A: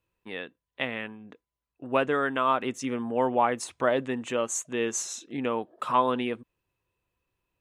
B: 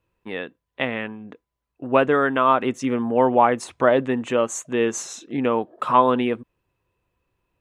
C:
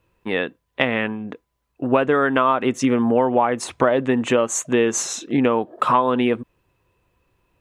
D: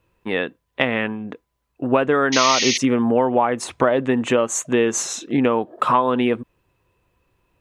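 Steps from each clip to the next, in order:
high shelf 2900 Hz -9 dB; gain +8 dB
compressor 6:1, threshold -22 dBFS, peak gain reduction 12 dB; gain +8 dB
painted sound noise, 2.32–2.78, 1800–6700 Hz -21 dBFS

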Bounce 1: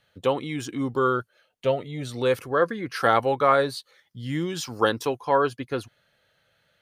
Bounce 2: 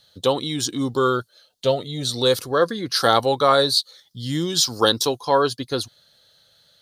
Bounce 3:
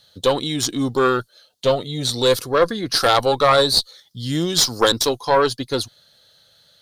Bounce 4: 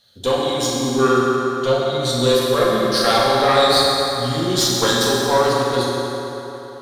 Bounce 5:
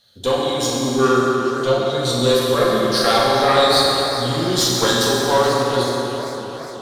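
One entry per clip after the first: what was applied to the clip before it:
resonant high shelf 3100 Hz +8.5 dB, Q 3; gain +3.5 dB
tube stage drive 9 dB, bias 0.6; gain +5.5 dB
reverb RT60 3.8 s, pre-delay 4 ms, DRR -6.5 dB; gain -5.5 dB
warbling echo 0.413 s, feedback 64%, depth 218 cents, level -15 dB

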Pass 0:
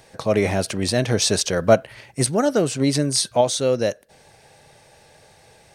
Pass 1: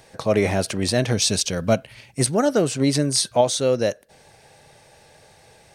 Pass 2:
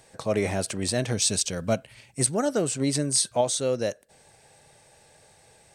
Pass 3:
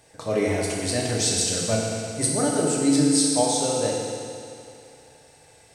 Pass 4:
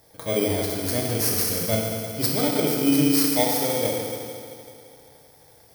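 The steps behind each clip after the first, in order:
spectral gain 1.13–2.18, 300–2100 Hz -6 dB
bell 8000 Hz +9 dB 0.38 oct; gain -6 dB
FDN reverb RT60 2.5 s, low-frequency decay 0.9×, high-frequency decay 1×, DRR -4 dB; gain -2.5 dB
FFT order left unsorted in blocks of 16 samples

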